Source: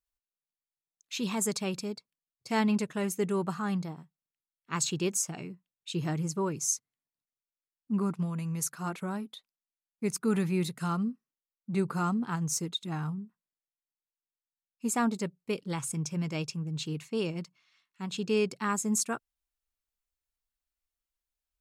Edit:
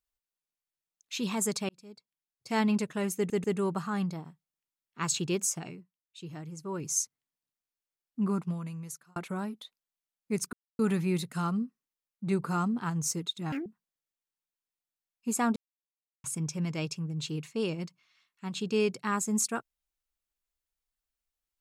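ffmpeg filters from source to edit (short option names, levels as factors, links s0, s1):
-filter_complex "[0:a]asplit=12[s0][s1][s2][s3][s4][s5][s6][s7][s8][s9][s10][s11];[s0]atrim=end=1.69,asetpts=PTS-STARTPTS,afade=t=out:st=1.686:d=0.004:c=hsin[s12];[s1]atrim=start=1.69:end=3.302,asetpts=PTS-STARTPTS,afade=t=in:d=0.93[s13];[s2]atrim=start=3.158:end=3.302[s14];[s3]atrim=start=3.158:end=5.69,asetpts=PTS-STARTPTS,afade=t=out:st=2.202:d=0.33:c=qua:silence=0.298538[s15];[s4]atrim=start=5.69:end=6.25,asetpts=PTS-STARTPTS,volume=0.299[s16];[s5]atrim=start=6.25:end=8.88,asetpts=PTS-STARTPTS,afade=t=in:d=0.33:c=qua:silence=0.298538,afade=t=out:st=1.85:d=0.78[s17];[s6]atrim=start=8.88:end=10.25,asetpts=PTS-STARTPTS,afade=t=in:d=0.004:c=hsin,afade=t=out:st=1.366:d=0.004:c=hsin,apad=pad_dur=0.26[s18];[s7]atrim=start=10.25:end=12.984,asetpts=PTS-STARTPTS,afade=t=in:d=0.004:c=hsin[s19];[s8]atrim=start=12.98:end=13.23,asetpts=PTS-STARTPTS,asetrate=78939,aresample=44100,atrim=end_sample=6159,asetpts=PTS-STARTPTS[s20];[s9]atrim=start=13.226:end=15.13,asetpts=PTS-STARTPTS,afade=t=out:st=1.9:d=0.004:c=hsin[s21];[s10]atrim=start=15.13:end=15.81,asetpts=PTS-STARTPTS,volume=0[s22];[s11]atrim=start=15.81,asetpts=PTS-STARTPTS,afade=t=in:d=0.004:c=hsin[s23];[s12][s13]concat=n=2:v=0:a=1[s24];[s24][s14]acrossfade=d=0.004:c1=hsin:c2=hsin[s25];[s15][s16][s17][s18][s19]concat=n=5:v=0:a=1[s26];[s25][s26]acrossfade=d=0.004:c1=hsin:c2=hsin[s27];[s27][s20]acrossfade=d=0.004:c1=hsin:c2=hsin[s28];[s21][s22][s23]concat=n=3:v=0:a=1[s29];[s28][s29]acrossfade=d=0.004:c1=hsin:c2=hsin"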